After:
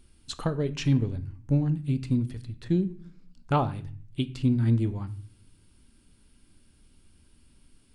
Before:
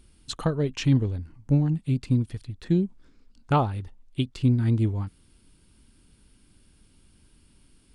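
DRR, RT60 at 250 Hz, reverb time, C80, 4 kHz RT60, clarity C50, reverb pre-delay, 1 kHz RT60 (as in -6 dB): 10.5 dB, 0.80 s, 0.45 s, 20.5 dB, 0.40 s, 17.0 dB, 3 ms, 0.40 s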